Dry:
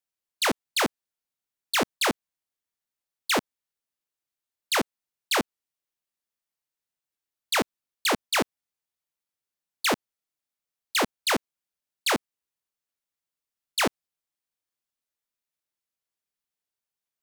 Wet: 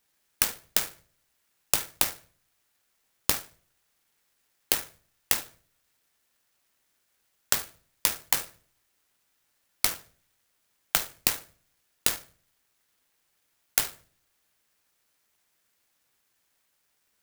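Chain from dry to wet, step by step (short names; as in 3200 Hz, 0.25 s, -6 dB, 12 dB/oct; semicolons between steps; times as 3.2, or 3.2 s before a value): HPF 520 Hz 12 dB/oct; band shelf 3300 Hz +13 dB 2.7 oct; flipped gate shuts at -9 dBFS, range -32 dB; in parallel at -6 dB: wrapped overs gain 21 dB; on the sum: reverb RT60 0.45 s, pre-delay 6 ms, DRR 4 dB; clock jitter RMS 0.099 ms; gain +4.5 dB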